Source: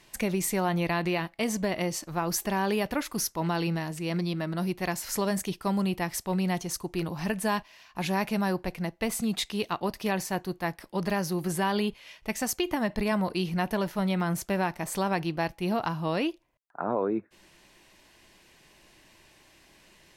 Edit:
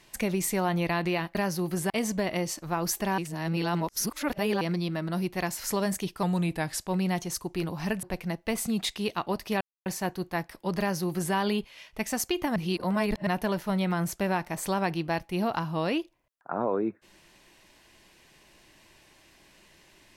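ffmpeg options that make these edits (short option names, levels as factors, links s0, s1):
-filter_complex "[0:a]asplit=11[s0][s1][s2][s3][s4][s5][s6][s7][s8][s9][s10];[s0]atrim=end=1.352[s11];[s1]atrim=start=11.078:end=11.632[s12];[s2]atrim=start=1.348:end=2.632[s13];[s3]atrim=start=2.628:end=4.062,asetpts=PTS-STARTPTS,areverse[s14];[s4]atrim=start=4.058:end=5.684[s15];[s5]atrim=start=5.68:end=6.27,asetpts=PTS-STARTPTS,asetrate=40131,aresample=44100,atrim=end_sample=28592,asetpts=PTS-STARTPTS[s16];[s6]atrim=start=6.266:end=7.422[s17];[s7]atrim=start=8.568:end=10.15,asetpts=PTS-STARTPTS,afade=t=out:st=1.578:d=0.004:c=hsin,apad=pad_dur=0.25[s18];[s8]atrim=start=10.15:end=12.852,asetpts=PTS-STARTPTS,afade=t=in:d=0.004:c=hsin[s19];[s9]atrim=start=12.848:end=13.562,asetpts=PTS-STARTPTS,areverse[s20];[s10]atrim=start=13.558[s21];[s11][s12]acrossfade=d=0.004:c1=hsin:c2=hsin[s22];[s22][s13]acrossfade=d=0.004:c1=hsin:c2=hsin[s23];[s23][s14]acrossfade=d=0.004:c1=hsin:c2=hsin[s24];[s24][s15]acrossfade=d=0.004:c1=hsin:c2=hsin[s25];[s25][s16]acrossfade=d=0.004:c1=hsin:c2=hsin[s26];[s26][s17]acrossfade=d=0.004:c1=hsin:c2=hsin[s27];[s18][s19]concat=n=2:v=0:a=1[s28];[s27][s28]acrossfade=d=0.004:c1=hsin:c2=hsin[s29];[s29][s20]acrossfade=d=0.004:c1=hsin:c2=hsin[s30];[s30][s21]acrossfade=d=0.004:c1=hsin:c2=hsin"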